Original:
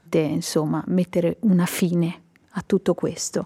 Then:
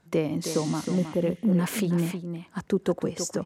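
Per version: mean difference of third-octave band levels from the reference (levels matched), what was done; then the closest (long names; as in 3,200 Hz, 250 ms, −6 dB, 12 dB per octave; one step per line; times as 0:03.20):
3.5 dB: healed spectral selection 0:00.51–0:01.18, 1,700–9,800 Hz both
on a send: single-tap delay 316 ms −8.5 dB
on the sum: level −5 dB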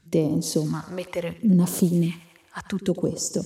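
5.0 dB: on a send: feedback echo with a high-pass in the loop 90 ms, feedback 64%, high-pass 190 Hz, level −16 dB
on the sum: all-pass phaser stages 2, 0.71 Hz, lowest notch 190–2,100 Hz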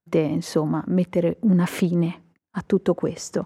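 2.0 dB: noise gate −50 dBFS, range −31 dB
high-shelf EQ 4,200 Hz −9.5 dB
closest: third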